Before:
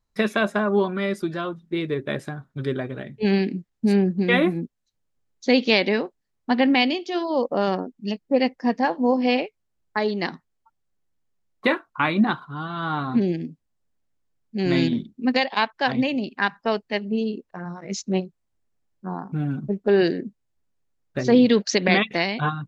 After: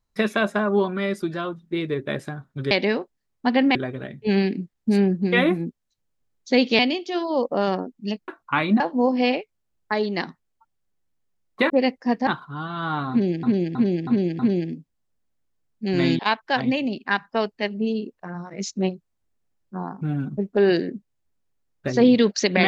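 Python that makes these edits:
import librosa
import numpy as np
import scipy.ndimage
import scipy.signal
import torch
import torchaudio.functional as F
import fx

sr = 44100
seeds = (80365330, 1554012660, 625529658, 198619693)

y = fx.edit(x, sr, fx.move(start_s=5.75, length_s=1.04, to_s=2.71),
    fx.swap(start_s=8.28, length_s=0.57, other_s=11.75, other_length_s=0.52),
    fx.repeat(start_s=13.11, length_s=0.32, count=5),
    fx.cut(start_s=14.91, length_s=0.59), tone=tone)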